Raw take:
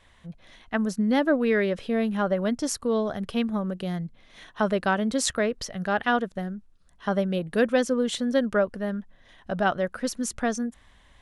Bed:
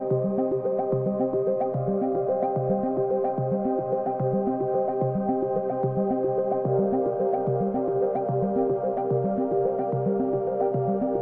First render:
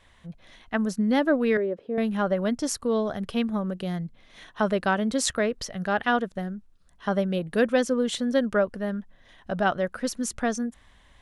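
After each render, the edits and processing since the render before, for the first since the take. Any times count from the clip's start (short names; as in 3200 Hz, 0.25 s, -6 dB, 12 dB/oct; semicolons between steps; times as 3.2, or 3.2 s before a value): 1.57–1.98 band-pass 400 Hz, Q 1.5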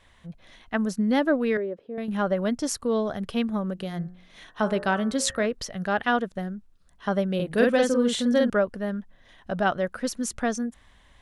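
1.26–2.08 fade out, to -8 dB; 3.74–5.46 de-hum 60.12 Hz, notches 31; 7.35–8.5 doubler 46 ms -2 dB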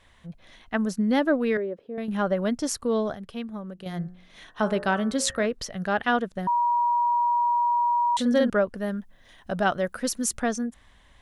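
3.15–3.86 gain -8 dB; 6.47–8.17 bleep 957 Hz -19.5 dBFS; 8.77–10.4 high shelf 7100 Hz +10 dB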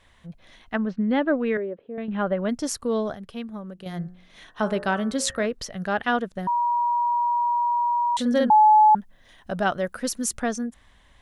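0.76–2.49 LPF 3300 Hz 24 dB/oct; 8.5–8.95 bleep 856 Hz -11 dBFS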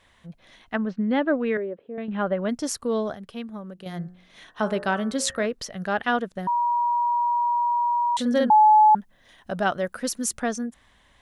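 low shelf 75 Hz -8.5 dB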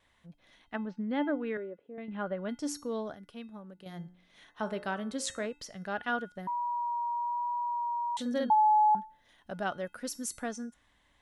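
resonator 290 Hz, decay 0.37 s, harmonics odd, mix 70%; vibrato 1.1 Hz 11 cents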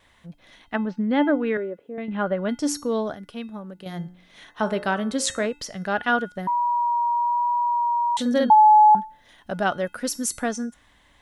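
gain +10.5 dB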